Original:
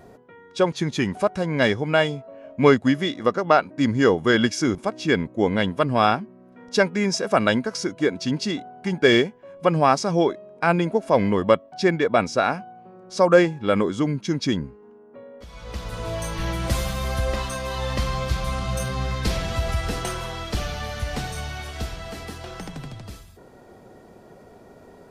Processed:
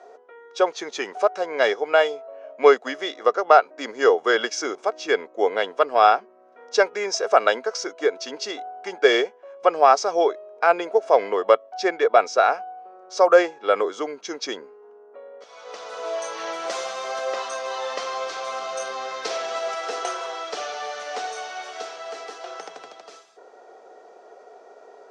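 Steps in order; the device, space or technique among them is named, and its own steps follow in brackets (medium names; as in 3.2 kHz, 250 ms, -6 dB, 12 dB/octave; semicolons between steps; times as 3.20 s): phone speaker on a table (cabinet simulation 410–7200 Hz, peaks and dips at 440 Hz +7 dB, 720 Hz +8 dB, 1.3 kHz +6 dB, 6 kHz +5 dB); trim -2 dB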